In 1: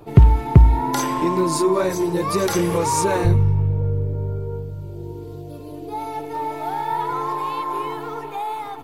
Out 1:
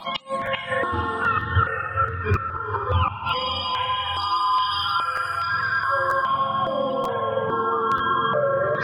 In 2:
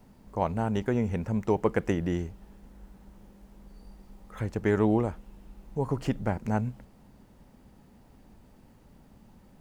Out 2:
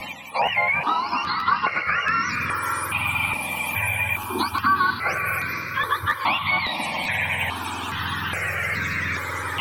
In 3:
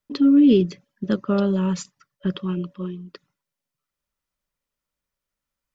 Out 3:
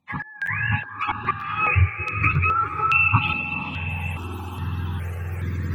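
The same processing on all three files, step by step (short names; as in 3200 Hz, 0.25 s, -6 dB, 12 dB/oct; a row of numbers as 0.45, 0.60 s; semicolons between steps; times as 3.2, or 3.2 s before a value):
spectrum mirrored in octaves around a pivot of 690 Hz; treble ducked by the level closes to 2300 Hz, closed at -21 dBFS; band shelf 1700 Hz +13.5 dB 2.3 oct; reverse; upward compressor, threshold -14 dBFS; reverse; flipped gate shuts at -4 dBFS, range -26 dB; compressor 4:1, threshold -27 dBFS; tilt -1.5 dB/oct; on a send: diffused feedback echo 0.487 s, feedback 40%, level -5.5 dB; on the sum: crackling interface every 0.94 s, samples 512, repeat, from 0.45; step phaser 2.4 Hz 410–3000 Hz; match loudness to -23 LUFS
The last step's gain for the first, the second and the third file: +7.0, +9.5, +12.0 dB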